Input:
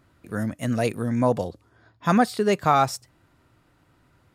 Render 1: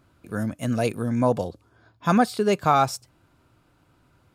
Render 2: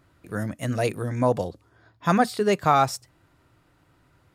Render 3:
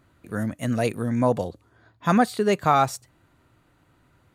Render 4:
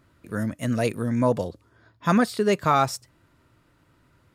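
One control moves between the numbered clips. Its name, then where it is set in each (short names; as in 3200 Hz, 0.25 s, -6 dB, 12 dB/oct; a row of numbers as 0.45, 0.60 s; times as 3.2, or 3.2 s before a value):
notch, frequency: 1900, 230, 5200, 760 Hz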